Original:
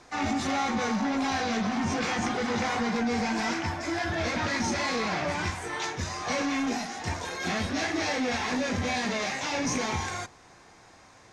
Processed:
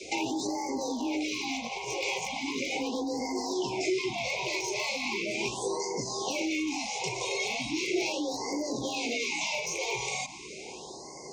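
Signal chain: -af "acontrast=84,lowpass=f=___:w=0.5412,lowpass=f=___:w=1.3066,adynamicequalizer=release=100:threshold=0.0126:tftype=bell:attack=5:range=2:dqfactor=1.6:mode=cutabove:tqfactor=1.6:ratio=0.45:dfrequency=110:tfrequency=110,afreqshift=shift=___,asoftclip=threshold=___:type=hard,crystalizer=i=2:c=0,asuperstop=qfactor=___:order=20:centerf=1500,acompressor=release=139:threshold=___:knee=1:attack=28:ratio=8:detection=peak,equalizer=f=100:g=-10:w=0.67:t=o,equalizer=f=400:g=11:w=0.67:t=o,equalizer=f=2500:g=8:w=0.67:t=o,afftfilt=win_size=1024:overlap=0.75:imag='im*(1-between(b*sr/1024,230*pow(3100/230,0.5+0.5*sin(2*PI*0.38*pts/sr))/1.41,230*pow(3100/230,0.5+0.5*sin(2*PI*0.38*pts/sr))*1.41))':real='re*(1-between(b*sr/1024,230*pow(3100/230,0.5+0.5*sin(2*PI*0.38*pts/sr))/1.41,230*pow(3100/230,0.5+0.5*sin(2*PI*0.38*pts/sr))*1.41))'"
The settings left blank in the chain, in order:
7900, 7900, 38, 0.211, 1.5, 0.0178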